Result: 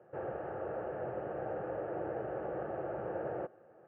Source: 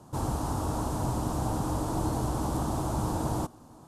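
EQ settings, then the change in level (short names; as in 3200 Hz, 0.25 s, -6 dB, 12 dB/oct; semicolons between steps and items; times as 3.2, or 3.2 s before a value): air absorption 440 m; speaker cabinet 240–3100 Hz, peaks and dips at 250 Hz +3 dB, 360 Hz +8 dB, 520 Hz +10 dB, 1000 Hz +3 dB, 1700 Hz +9 dB, 2800 Hz +6 dB; fixed phaser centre 1000 Hz, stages 6; -4.0 dB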